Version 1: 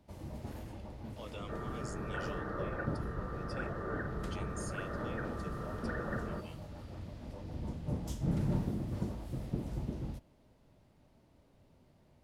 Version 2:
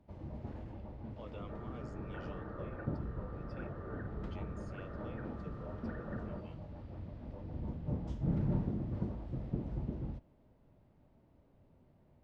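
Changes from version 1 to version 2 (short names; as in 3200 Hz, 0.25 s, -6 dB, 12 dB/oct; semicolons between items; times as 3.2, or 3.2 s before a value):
second sound -5.5 dB; master: add tape spacing loss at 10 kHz 31 dB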